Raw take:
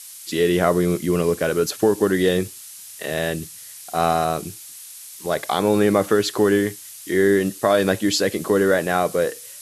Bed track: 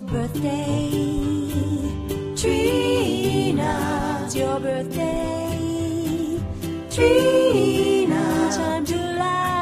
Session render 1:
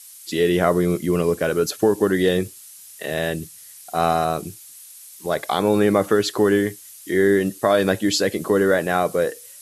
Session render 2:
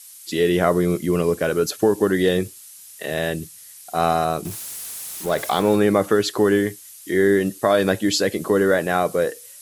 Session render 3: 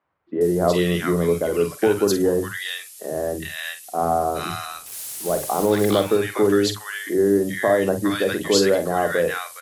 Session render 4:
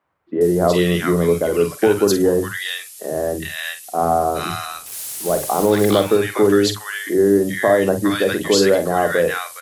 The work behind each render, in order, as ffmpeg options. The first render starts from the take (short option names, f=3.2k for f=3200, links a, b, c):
-af "afftdn=nr=6:nf=-40"
-filter_complex "[0:a]asettb=1/sr,asplit=3[a][b][c];[a]atrim=end=4.454[d];[b]atrim=start=4.45:end=5.76,asetpts=PTS-STARTPTS,afade=t=in:d=0.004:c=qsin,afade=t=out:st=1.306:d=0.004:c=qsin,aeval=exprs='val(0)+0.5*0.0316*sgn(val(0))':c=same[e];[c]atrim=start=5.756[f];[d][e]acrossfade=d=0.004:c1=hsin:c2=qsin[g];[g][f]acrossfade=d=0.004:c1=qsin:c2=hsin"
-filter_complex "[0:a]asplit=2[a][b];[b]adelay=47,volume=-10dB[c];[a][c]amix=inputs=2:normalize=0,acrossover=split=180|1200[d][e][f];[d]adelay=40[g];[f]adelay=410[h];[g][e][h]amix=inputs=3:normalize=0"
-af "volume=3.5dB,alimiter=limit=-3dB:level=0:latency=1"